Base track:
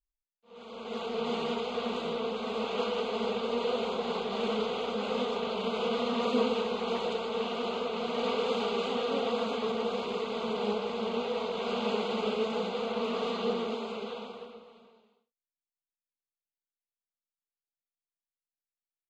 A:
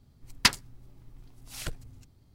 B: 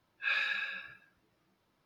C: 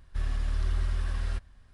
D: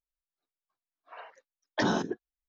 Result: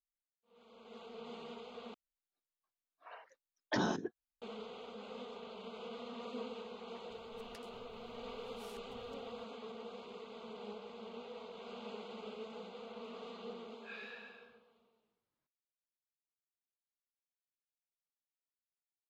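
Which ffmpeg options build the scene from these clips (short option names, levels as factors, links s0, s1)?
-filter_complex "[0:a]volume=0.15[s0];[1:a]acompressor=threshold=0.00447:ratio=6:attack=3.2:release=140:knee=1:detection=peak[s1];[2:a]flanger=delay=17.5:depth=7.4:speed=1.3[s2];[s0]asplit=2[s3][s4];[s3]atrim=end=1.944[s5];[4:a]atrim=end=2.48,asetpts=PTS-STARTPTS,volume=0.473[s6];[s4]atrim=start=4.416[s7];[s1]atrim=end=2.34,asetpts=PTS-STARTPTS,volume=0.335,afade=t=in:d=0.004:c=hsin,afade=t=out:st=2.336:d=0.004:c=hsin,adelay=7100[s8];[s2]atrim=end=1.85,asetpts=PTS-STARTPTS,volume=0.178,afade=t=in:d=0.004:c=hsin,afade=t=out:st=1.846:d=0.004:c=hsin,adelay=13620[s9];[s5][s6]acrossfade=d=0.004:c1=hsin:c2=hsin[s10];[s10][s7]acrossfade=d=0.004:c1=hsin:c2=hsin[s11];[s11][s8][s9]amix=inputs=3:normalize=0"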